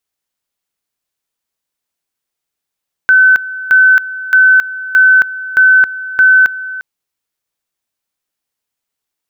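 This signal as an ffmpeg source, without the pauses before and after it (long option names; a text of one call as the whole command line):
ffmpeg -f lavfi -i "aevalsrc='pow(10,(-3.5-16.5*gte(mod(t,0.62),0.27))/20)*sin(2*PI*1520*t)':duration=3.72:sample_rate=44100" out.wav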